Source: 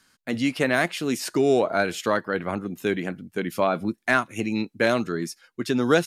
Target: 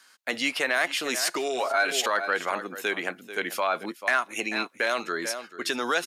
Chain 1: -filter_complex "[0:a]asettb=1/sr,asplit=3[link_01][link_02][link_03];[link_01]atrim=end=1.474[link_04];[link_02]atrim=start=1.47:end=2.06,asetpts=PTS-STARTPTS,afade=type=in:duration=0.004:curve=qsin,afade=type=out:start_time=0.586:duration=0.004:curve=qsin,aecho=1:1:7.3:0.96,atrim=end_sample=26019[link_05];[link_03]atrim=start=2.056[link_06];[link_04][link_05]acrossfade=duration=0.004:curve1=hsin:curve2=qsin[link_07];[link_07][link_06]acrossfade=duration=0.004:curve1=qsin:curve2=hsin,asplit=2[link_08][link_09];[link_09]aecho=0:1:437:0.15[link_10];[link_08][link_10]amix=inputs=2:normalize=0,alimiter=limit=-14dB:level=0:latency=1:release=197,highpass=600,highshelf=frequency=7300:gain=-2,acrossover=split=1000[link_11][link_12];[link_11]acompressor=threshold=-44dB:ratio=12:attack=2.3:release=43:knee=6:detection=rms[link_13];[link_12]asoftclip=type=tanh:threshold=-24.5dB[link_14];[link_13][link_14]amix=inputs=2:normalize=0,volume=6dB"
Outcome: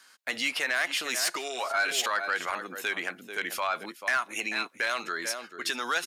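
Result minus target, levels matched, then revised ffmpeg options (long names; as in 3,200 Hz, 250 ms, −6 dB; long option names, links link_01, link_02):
downward compressor: peak gain reduction +11 dB; soft clipping: distortion +14 dB
-filter_complex "[0:a]asettb=1/sr,asplit=3[link_01][link_02][link_03];[link_01]atrim=end=1.474[link_04];[link_02]atrim=start=1.47:end=2.06,asetpts=PTS-STARTPTS,afade=type=in:duration=0.004:curve=qsin,afade=type=out:start_time=0.586:duration=0.004:curve=qsin,aecho=1:1:7.3:0.96,atrim=end_sample=26019[link_05];[link_03]atrim=start=2.056[link_06];[link_04][link_05]acrossfade=duration=0.004:curve1=hsin:curve2=qsin[link_07];[link_07][link_06]acrossfade=duration=0.004:curve1=qsin:curve2=hsin,asplit=2[link_08][link_09];[link_09]aecho=0:1:437:0.15[link_10];[link_08][link_10]amix=inputs=2:normalize=0,alimiter=limit=-14dB:level=0:latency=1:release=197,highpass=600,highshelf=frequency=7300:gain=-2,acrossover=split=1000[link_11][link_12];[link_11]acompressor=threshold=-32dB:ratio=12:attack=2.3:release=43:knee=6:detection=rms[link_13];[link_12]asoftclip=type=tanh:threshold=-15.5dB[link_14];[link_13][link_14]amix=inputs=2:normalize=0,volume=6dB"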